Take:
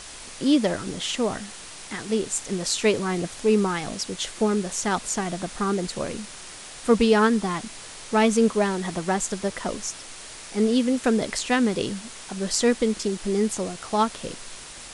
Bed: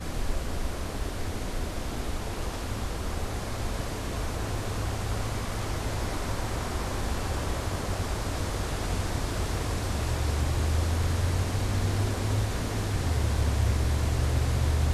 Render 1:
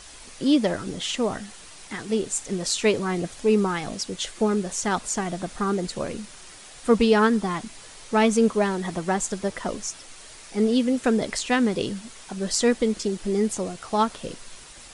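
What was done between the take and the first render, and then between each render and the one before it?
noise reduction 6 dB, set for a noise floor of -41 dBFS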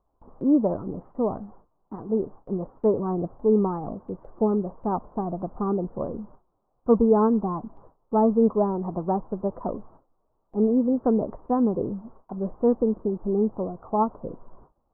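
steep low-pass 1.1 kHz 48 dB/octave; gate with hold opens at -38 dBFS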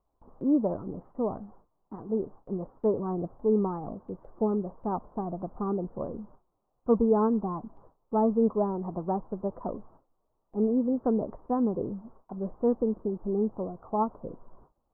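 trim -4.5 dB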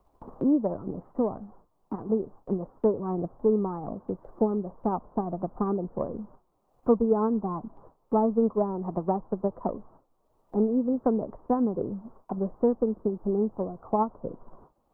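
transient shaper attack +5 dB, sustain -2 dB; three bands compressed up and down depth 40%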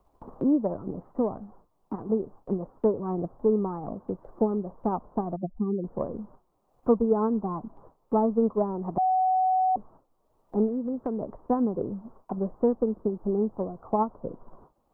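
5.36–5.84 s: spectral contrast enhancement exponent 2.7; 8.98–9.76 s: bleep 748 Hz -20 dBFS; 10.68–11.20 s: compression 2.5:1, threshold -28 dBFS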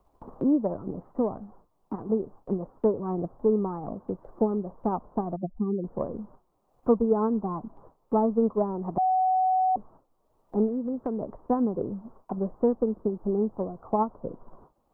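no audible change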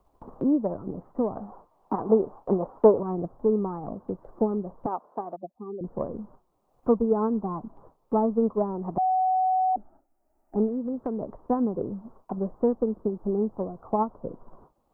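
1.36–3.03 s: peaking EQ 840 Hz +12 dB 2.3 oct; 4.86–5.81 s: high-pass 460 Hz; 9.73–10.56 s: static phaser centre 710 Hz, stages 8

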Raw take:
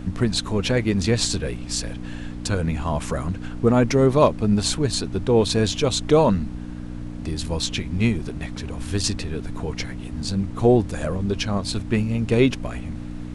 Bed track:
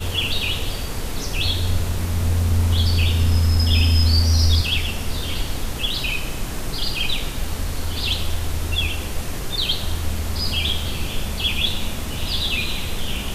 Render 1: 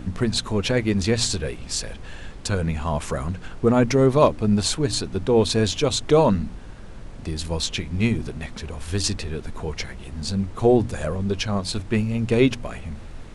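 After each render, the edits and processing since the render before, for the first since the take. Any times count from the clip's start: de-hum 60 Hz, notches 5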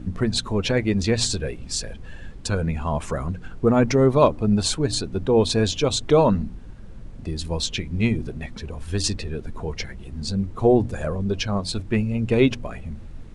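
noise reduction 9 dB, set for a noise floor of -38 dBFS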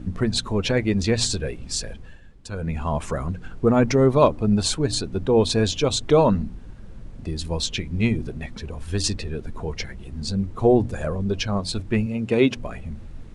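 1.92–2.78 s: dip -11 dB, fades 0.29 s; 12.06–12.57 s: high-pass 150 Hz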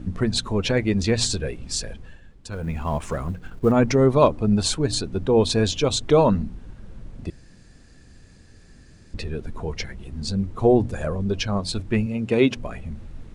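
2.52–3.72 s: companding laws mixed up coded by A; 7.30–9.14 s: room tone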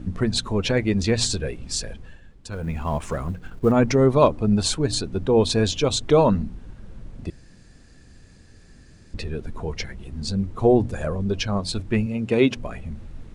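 no audible change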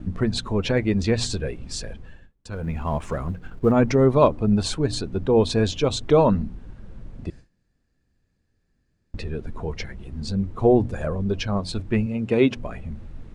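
gate with hold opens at -35 dBFS; treble shelf 4.1 kHz -8 dB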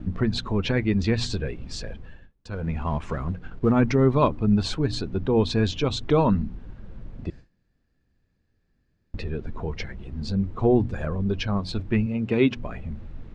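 low-pass 4.9 kHz 12 dB/octave; dynamic bell 580 Hz, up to -7 dB, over -34 dBFS, Q 1.5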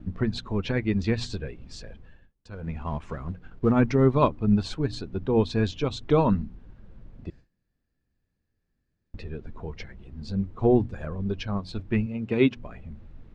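upward expansion 1.5:1, over -31 dBFS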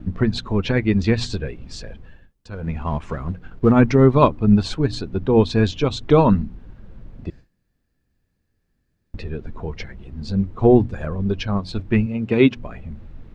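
trim +7 dB; peak limiter -2 dBFS, peak gain reduction 1.5 dB

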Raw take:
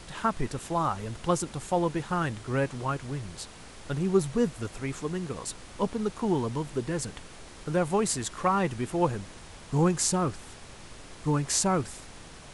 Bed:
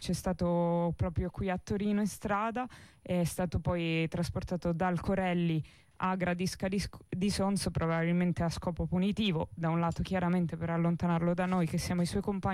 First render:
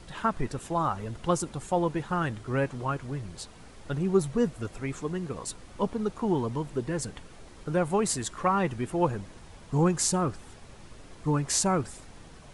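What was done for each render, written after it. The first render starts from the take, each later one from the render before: noise reduction 7 dB, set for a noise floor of -47 dBFS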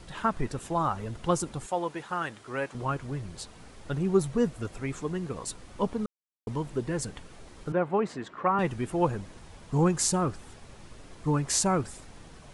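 1.66–2.75 s: high-pass 600 Hz 6 dB/octave; 6.06–6.47 s: mute; 7.72–8.59 s: band-pass 190–2200 Hz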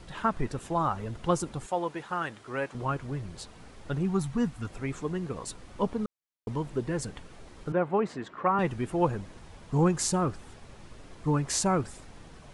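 4.06–4.68 s: time-frequency box 320–710 Hz -9 dB; treble shelf 5.8 kHz -5 dB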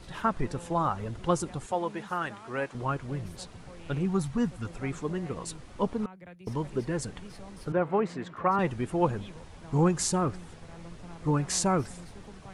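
add bed -17 dB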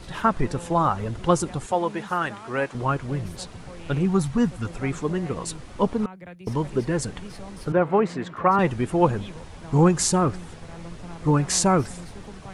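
trim +6.5 dB

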